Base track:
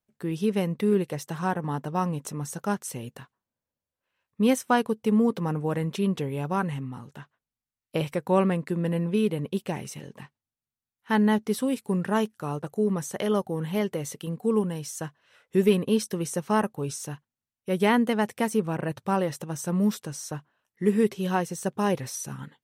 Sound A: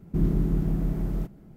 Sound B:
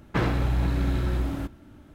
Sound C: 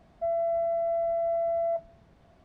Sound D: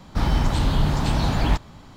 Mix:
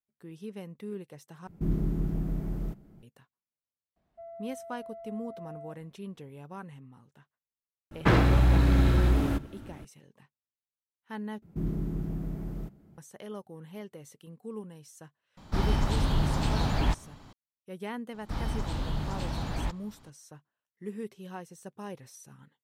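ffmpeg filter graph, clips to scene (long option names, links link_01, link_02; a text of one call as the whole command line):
ffmpeg -i bed.wav -i cue0.wav -i cue1.wav -i cue2.wav -i cue3.wav -filter_complex "[1:a]asplit=2[link_01][link_02];[4:a]asplit=2[link_03][link_04];[0:a]volume=-16dB[link_05];[2:a]acontrast=77[link_06];[link_02]highpass=42[link_07];[link_05]asplit=3[link_08][link_09][link_10];[link_08]atrim=end=1.474[link_11];[link_01]atrim=end=1.56,asetpts=PTS-STARTPTS,volume=-5dB[link_12];[link_09]atrim=start=3.026:end=11.424[link_13];[link_07]atrim=end=1.56,asetpts=PTS-STARTPTS,volume=-7dB[link_14];[link_10]atrim=start=12.976[link_15];[3:a]atrim=end=2.44,asetpts=PTS-STARTPTS,volume=-17.5dB,afade=type=in:duration=0.004:curve=hsin,afade=type=out:start_time=2.436:duration=0.004:curve=hsin,adelay=3960[link_16];[link_06]atrim=end=1.94,asetpts=PTS-STARTPTS,volume=-3.5dB,afade=type=in:duration=0.004:curve=hsin,afade=type=out:start_time=1.936:duration=0.004:curve=hsin,adelay=7910[link_17];[link_03]atrim=end=1.96,asetpts=PTS-STARTPTS,volume=-6dB,afade=type=in:duration=0.004:curve=hsin,afade=type=out:start_time=1.956:duration=0.004:curve=hsin,adelay=15370[link_18];[link_04]atrim=end=1.96,asetpts=PTS-STARTPTS,volume=-12dB,afade=type=in:duration=0.004:curve=hsin,afade=type=out:start_time=1.956:duration=0.004:curve=hsin,adelay=18140[link_19];[link_11][link_12]acrossfade=duration=0.004:curve1=hsin:curve2=hsin[link_20];[link_20][link_13]acrossfade=duration=0.004:curve1=hsin:curve2=hsin[link_21];[link_21][link_14]acrossfade=duration=0.004:curve1=hsin:curve2=hsin[link_22];[link_22][link_15]acrossfade=duration=0.004:curve1=hsin:curve2=hsin[link_23];[link_23][link_16][link_17][link_18][link_19]amix=inputs=5:normalize=0" out.wav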